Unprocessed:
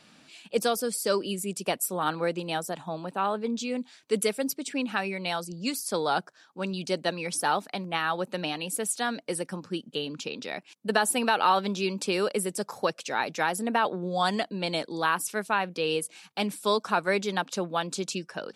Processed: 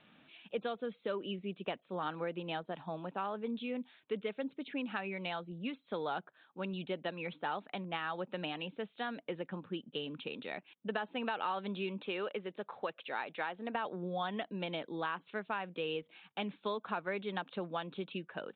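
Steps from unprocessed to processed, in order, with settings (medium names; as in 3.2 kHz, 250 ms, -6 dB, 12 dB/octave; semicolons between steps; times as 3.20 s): 12.01–13.75 s: bass shelf 230 Hz -11.5 dB; compression 3:1, threshold -28 dBFS, peak gain reduction 8.5 dB; resampled via 8 kHz; trim -6 dB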